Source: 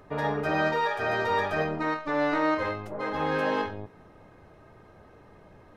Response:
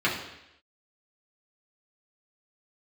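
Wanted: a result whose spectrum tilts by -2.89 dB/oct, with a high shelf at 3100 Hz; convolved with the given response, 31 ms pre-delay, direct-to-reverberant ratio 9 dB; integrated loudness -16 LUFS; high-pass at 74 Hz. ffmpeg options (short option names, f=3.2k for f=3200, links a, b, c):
-filter_complex "[0:a]highpass=74,highshelf=f=3.1k:g=6.5,asplit=2[a][b];[1:a]atrim=start_sample=2205,adelay=31[c];[b][c]afir=irnorm=-1:irlink=0,volume=-23dB[d];[a][d]amix=inputs=2:normalize=0,volume=11dB"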